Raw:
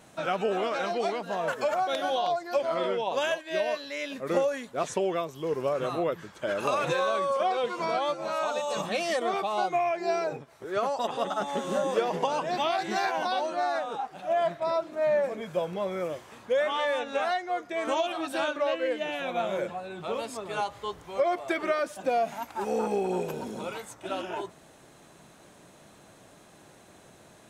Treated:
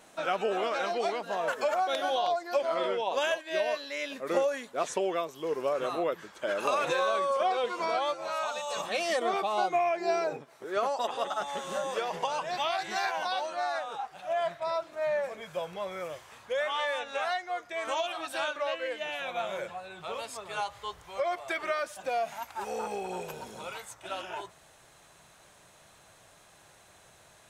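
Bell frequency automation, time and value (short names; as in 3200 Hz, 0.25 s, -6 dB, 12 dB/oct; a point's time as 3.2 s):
bell -14 dB 1.8 oct
7.82 s 110 Hz
8.59 s 340 Hz
9.25 s 70 Hz
10.51 s 70 Hz
11.5 s 260 Hz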